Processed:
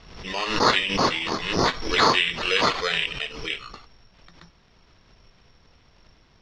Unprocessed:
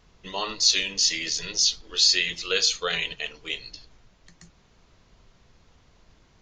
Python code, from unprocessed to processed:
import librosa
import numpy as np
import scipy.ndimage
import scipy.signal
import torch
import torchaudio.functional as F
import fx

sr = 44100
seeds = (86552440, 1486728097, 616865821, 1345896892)

y = (np.kron(x[::8], np.eye(8)[0]) * 8)[:len(x)]
y = scipy.signal.sosfilt(scipy.signal.butter(4, 3700.0, 'lowpass', fs=sr, output='sos'), y)
y = fx.pre_swell(y, sr, db_per_s=64.0)